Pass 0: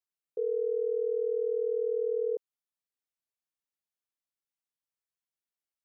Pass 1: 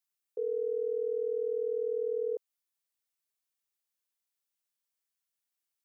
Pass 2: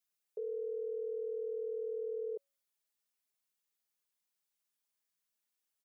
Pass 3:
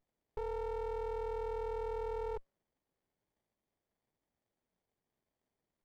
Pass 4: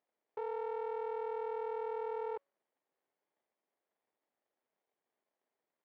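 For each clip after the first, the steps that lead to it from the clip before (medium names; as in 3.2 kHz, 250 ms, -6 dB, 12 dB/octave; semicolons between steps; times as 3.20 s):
tilt EQ +2 dB/octave
comb 4.8 ms, depth 85%; peak limiter -31.5 dBFS, peak gain reduction 8.5 dB; feedback comb 560 Hz, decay 0.52 s, mix 30%; trim +1 dB
sliding maximum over 33 samples; trim +3 dB
band-pass 400–2600 Hz; trim +2 dB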